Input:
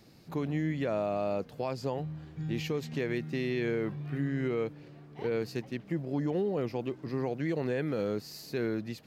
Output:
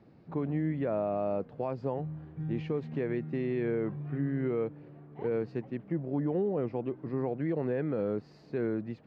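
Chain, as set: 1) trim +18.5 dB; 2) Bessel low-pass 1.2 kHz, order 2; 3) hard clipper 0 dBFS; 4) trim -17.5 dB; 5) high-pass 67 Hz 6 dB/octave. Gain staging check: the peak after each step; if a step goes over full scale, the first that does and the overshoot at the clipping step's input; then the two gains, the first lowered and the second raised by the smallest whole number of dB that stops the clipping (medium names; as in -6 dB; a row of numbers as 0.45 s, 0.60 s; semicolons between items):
-2.5 dBFS, -3.0 dBFS, -3.0 dBFS, -20.5 dBFS, -20.5 dBFS; nothing clips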